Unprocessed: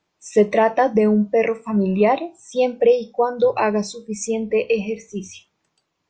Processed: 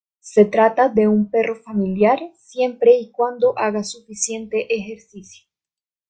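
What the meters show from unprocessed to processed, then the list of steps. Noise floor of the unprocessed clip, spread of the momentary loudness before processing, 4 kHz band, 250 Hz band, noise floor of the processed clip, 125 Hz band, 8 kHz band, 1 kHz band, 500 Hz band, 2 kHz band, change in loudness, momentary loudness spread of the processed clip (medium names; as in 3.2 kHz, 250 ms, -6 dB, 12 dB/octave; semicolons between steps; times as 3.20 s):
-74 dBFS, 12 LU, +1.0 dB, 0.0 dB, under -85 dBFS, no reading, +6.0 dB, +1.5 dB, +1.0 dB, +0.5 dB, +1.5 dB, 10 LU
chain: three bands expanded up and down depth 100%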